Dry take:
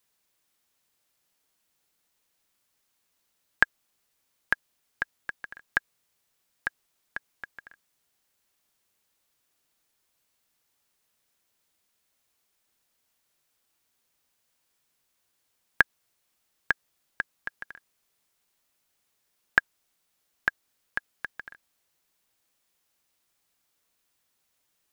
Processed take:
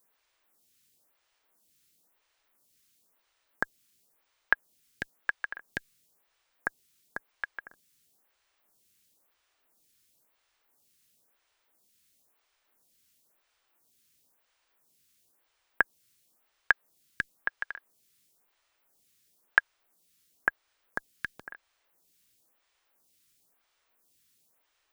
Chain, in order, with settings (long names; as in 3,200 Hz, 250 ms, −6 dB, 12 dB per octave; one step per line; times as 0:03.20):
in parallel at +2 dB: compressor whose output falls as the input rises −25 dBFS
on the sum: phaser with staggered stages 0.98 Hz
level −3 dB